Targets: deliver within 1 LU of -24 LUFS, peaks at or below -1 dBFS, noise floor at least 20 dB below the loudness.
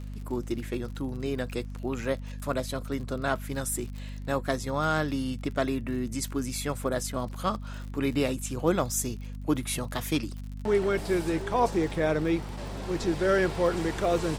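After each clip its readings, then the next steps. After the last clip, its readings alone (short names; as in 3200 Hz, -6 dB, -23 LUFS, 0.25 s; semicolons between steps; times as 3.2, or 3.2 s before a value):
ticks 49/s; hum 50 Hz; harmonics up to 250 Hz; hum level -35 dBFS; loudness -29.5 LUFS; peak -11.5 dBFS; loudness target -24.0 LUFS
-> de-click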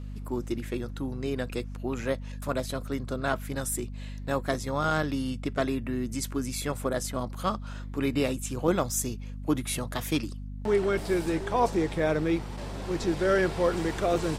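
ticks 0/s; hum 50 Hz; harmonics up to 250 Hz; hum level -35 dBFS
-> notches 50/100/150/200/250 Hz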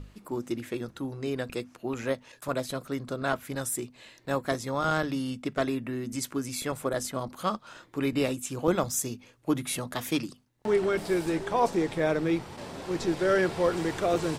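hum none; loudness -30.0 LUFS; peak -12.0 dBFS; loudness target -24.0 LUFS
-> gain +6 dB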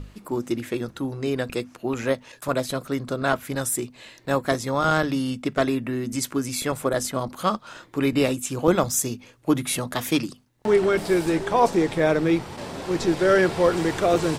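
loudness -24.0 LUFS; peak -6.0 dBFS; noise floor -52 dBFS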